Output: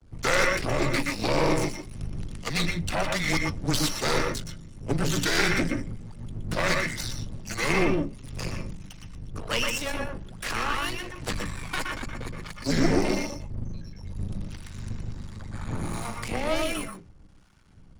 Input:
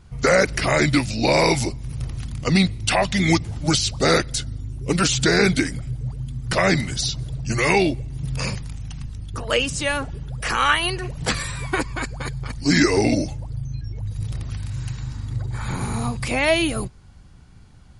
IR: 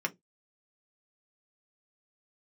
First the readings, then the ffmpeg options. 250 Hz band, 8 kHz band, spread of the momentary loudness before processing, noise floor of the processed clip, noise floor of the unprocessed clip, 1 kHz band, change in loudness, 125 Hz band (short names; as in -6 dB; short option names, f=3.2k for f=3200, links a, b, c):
-7.0 dB, -6.5 dB, 13 LU, -49 dBFS, -46 dBFS, -6.0 dB, -6.5 dB, -7.5 dB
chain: -filter_complex "[0:a]acrossover=split=640[a][b];[a]aeval=exprs='val(0)*(1-0.7/2+0.7/2*cos(2*PI*1.4*n/s))':c=same[c];[b]aeval=exprs='val(0)*(1-0.7/2-0.7/2*cos(2*PI*1.4*n/s))':c=same[d];[c][d]amix=inputs=2:normalize=0,aeval=exprs='max(val(0),0)':c=same,afreqshift=-15,asplit=2[e][f];[1:a]atrim=start_sample=2205,adelay=119[g];[f][g]afir=irnorm=-1:irlink=0,volume=-7.5dB[h];[e][h]amix=inputs=2:normalize=0"